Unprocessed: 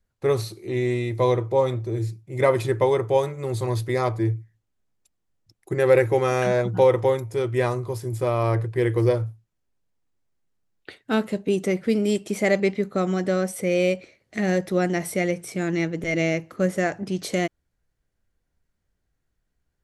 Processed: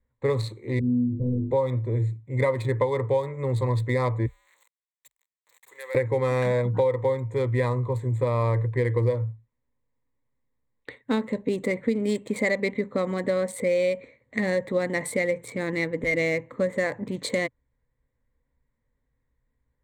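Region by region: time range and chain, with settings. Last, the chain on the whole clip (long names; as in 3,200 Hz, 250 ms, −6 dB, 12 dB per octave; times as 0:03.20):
0:00.79–0:01.51: variable-slope delta modulation 16 kbit/s + inverse Chebyshev low-pass filter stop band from 1,700 Hz, stop band 80 dB + flutter between parallel walls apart 3.5 metres, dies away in 0.58 s
0:04.26–0:05.95: converter with a step at zero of −34.5 dBFS + high-pass filter 500 Hz + first difference
whole clip: adaptive Wiener filter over 9 samples; EQ curve with evenly spaced ripples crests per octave 1, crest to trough 12 dB; downward compressor 6 to 1, threshold −20 dBFS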